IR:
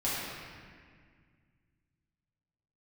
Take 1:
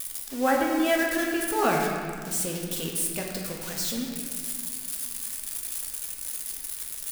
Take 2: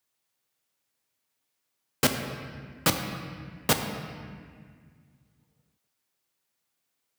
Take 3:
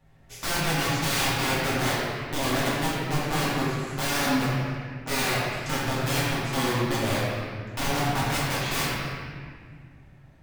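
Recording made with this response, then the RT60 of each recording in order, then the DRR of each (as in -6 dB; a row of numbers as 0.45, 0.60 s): 3; 1.9, 1.9, 1.9 s; -1.0, 4.0, -10.0 dB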